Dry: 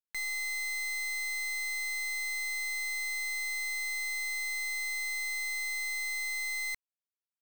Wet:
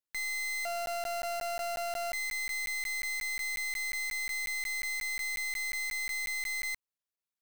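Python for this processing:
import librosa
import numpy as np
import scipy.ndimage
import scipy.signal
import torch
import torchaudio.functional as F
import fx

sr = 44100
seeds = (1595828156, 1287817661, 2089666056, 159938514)

y = fx.sample_sort(x, sr, block=64, at=(0.65, 2.13))
y = fx.buffer_crackle(y, sr, first_s=0.86, period_s=0.18, block=512, kind='zero')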